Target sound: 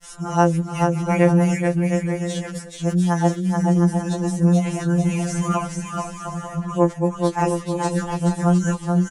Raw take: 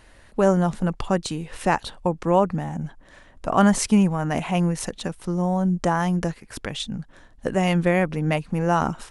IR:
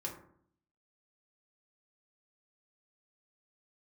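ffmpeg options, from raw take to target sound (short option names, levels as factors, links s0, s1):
-filter_complex "[0:a]areverse,deesser=0.75,lowshelf=f=66:g=-8.5,acompressor=mode=upward:threshold=0.00891:ratio=2.5,lowpass=8000,aexciter=amount=3.3:drive=7.4:freq=5600,asplit=2[s0][s1];[s1]aecho=0:1:430|709.5|891.2|1009|1086:0.631|0.398|0.251|0.158|0.1[s2];[s0][s2]amix=inputs=2:normalize=0,afftfilt=real='re*2.83*eq(mod(b,8),0)':imag='im*2.83*eq(mod(b,8),0)':win_size=2048:overlap=0.75"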